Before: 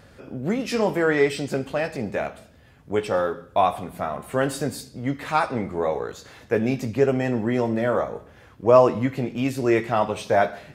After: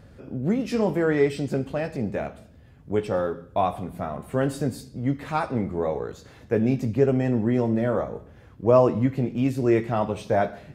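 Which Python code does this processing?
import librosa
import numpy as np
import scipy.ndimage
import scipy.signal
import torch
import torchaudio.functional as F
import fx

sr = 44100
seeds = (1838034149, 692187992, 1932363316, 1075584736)

y = fx.low_shelf(x, sr, hz=460.0, db=11.0)
y = y * 10.0 ** (-7.0 / 20.0)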